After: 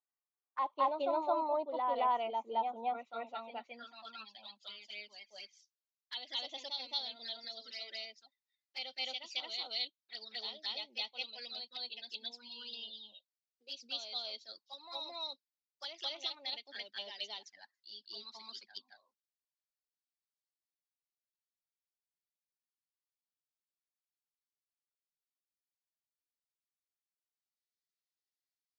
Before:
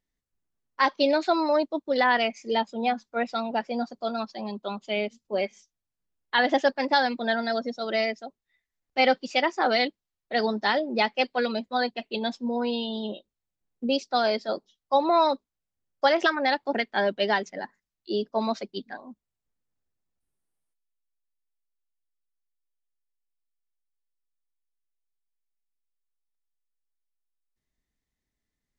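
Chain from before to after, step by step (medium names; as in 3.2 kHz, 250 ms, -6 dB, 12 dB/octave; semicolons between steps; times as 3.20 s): band-pass sweep 1 kHz -> 4.6 kHz, 2.86–4.87 s; reverse echo 219 ms -3.5 dB; touch-sensitive flanger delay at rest 2.6 ms, full sweep at -36 dBFS; trim -1.5 dB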